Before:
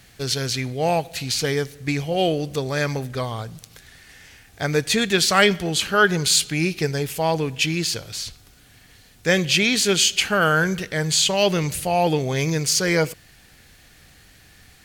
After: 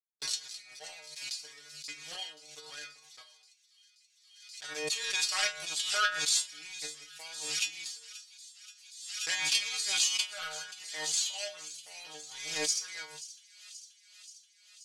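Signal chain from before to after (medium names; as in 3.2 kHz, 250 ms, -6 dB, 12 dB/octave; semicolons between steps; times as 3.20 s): spectral sustain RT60 0.36 s; power-law waveshaper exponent 2; frequency weighting ITU-R 468; gate -47 dBFS, range -53 dB; bass shelf 100 Hz -9 dB; transient shaper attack +8 dB, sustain -1 dB; hum notches 50/100/150 Hz; inharmonic resonator 150 Hz, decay 0.31 s, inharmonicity 0.002; on a send: feedback echo behind a high-pass 530 ms, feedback 69%, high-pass 3.5 kHz, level -15 dB; on the sum: swell ahead of each attack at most 52 dB/s; trim -6 dB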